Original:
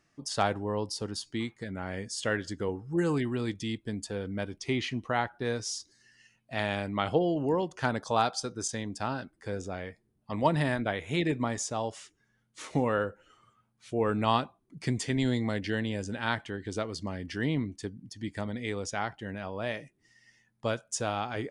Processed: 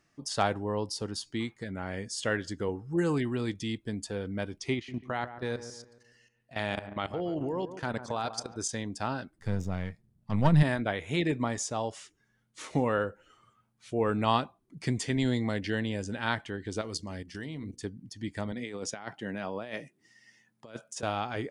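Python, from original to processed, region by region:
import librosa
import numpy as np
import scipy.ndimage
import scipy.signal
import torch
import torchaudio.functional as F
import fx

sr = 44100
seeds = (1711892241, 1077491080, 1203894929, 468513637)

y = fx.chain(x, sr, fx.level_steps(step_db=16),
    fx.echo_wet_lowpass(ms=141, feedback_pct=42, hz=1700.0, wet_db=-11.5), at=(4.74, 8.57))
y = fx.chain(y, sr, fx.halfwave_gain(db=-7.0),
    fx.low_shelf_res(hz=240.0, db=9.0, q=1.5), at=(9.38, 10.63))
y = fx.chain(y, sr, fx.hum_notches(base_hz=60, count=8),
    fx.level_steps(step_db=13),
    fx.bass_treble(bass_db=1, treble_db=9), at=(16.81, 17.81))
y = fx.chain(y, sr, fx.cheby1_highpass(hz=180.0, order=2),
    fx.over_compress(threshold_db=-37.0, ratio=-0.5), at=(18.52, 21.03))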